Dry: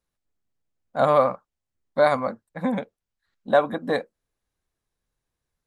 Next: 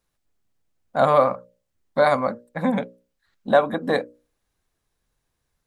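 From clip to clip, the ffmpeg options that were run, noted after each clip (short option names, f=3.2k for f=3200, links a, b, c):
-filter_complex "[0:a]asplit=2[a][b];[b]acompressor=threshold=-29dB:ratio=6,volume=1.5dB[c];[a][c]amix=inputs=2:normalize=0,bandreject=f=60:t=h:w=6,bandreject=f=120:t=h:w=6,bandreject=f=180:t=h:w=6,bandreject=f=240:t=h:w=6,bandreject=f=300:t=h:w=6,bandreject=f=360:t=h:w=6,bandreject=f=420:t=h:w=6,bandreject=f=480:t=h:w=6,bandreject=f=540:t=h:w=6,bandreject=f=600:t=h:w=6"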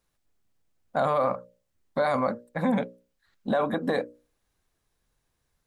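-af "alimiter=limit=-16dB:level=0:latency=1:release=27"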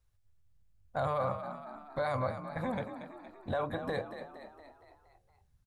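-filter_complex "[0:a]lowshelf=f=140:t=q:w=3:g=13,asplit=2[a][b];[b]asplit=6[c][d][e][f][g][h];[c]adelay=233,afreqshift=48,volume=-10dB[i];[d]adelay=466,afreqshift=96,volume=-15.4dB[j];[e]adelay=699,afreqshift=144,volume=-20.7dB[k];[f]adelay=932,afreqshift=192,volume=-26.1dB[l];[g]adelay=1165,afreqshift=240,volume=-31.4dB[m];[h]adelay=1398,afreqshift=288,volume=-36.8dB[n];[i][j][k][l][m][n]amix=inputs=6:normalize=0[o];[a][o]amix=inputs=2:normalize=0,volume=-7.5dB"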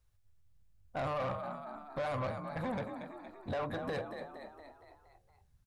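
-af "asoftclip=type=tanh:threshold=-32dB,volume=1dB"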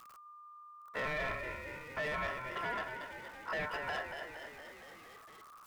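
-af "aeval=exprs='val(0)+0.5*0.00355*sgn(val(0))':c=same,aeval=exprs='val(0)*sin(2*PI*1200*n/s)':c=same,volume=1dB"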